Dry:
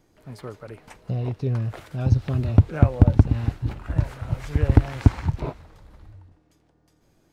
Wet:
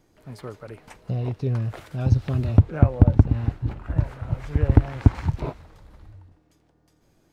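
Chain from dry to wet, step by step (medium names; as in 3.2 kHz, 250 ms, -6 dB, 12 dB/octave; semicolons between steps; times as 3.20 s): 2.58–5.15 s: treble shelf 2.9 kHz -9.5 dB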